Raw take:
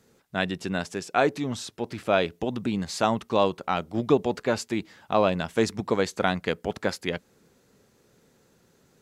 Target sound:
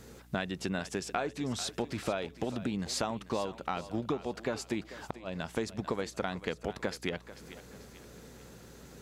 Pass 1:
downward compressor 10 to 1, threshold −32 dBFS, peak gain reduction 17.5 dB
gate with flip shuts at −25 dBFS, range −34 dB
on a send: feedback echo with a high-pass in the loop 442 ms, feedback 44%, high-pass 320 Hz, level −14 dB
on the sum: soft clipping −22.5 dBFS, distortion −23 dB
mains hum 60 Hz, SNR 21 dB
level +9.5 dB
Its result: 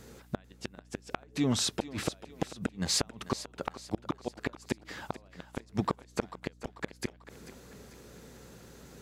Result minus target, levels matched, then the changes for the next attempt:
downward compressor: peak gain reduction −7 dB
change: downward compressor 10 to 1, threshold −40 dBFS, peak gain reduction 25 dB

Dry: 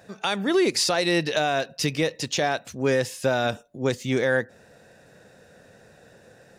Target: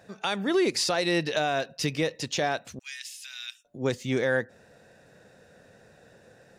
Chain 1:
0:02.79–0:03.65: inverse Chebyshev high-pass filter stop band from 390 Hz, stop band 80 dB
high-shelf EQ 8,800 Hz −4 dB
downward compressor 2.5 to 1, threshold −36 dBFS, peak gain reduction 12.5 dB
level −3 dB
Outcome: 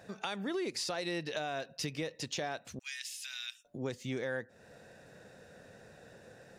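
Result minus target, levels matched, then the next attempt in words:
downward compressor: peak gain reduction +12.5 dB
0:02.79–0:03.65: inverse Chebyshev high-pass filter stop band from 390 Hz, stop band 80 dB
high-shelf EQ 8,800 Hz −4 dB
level −3 dB

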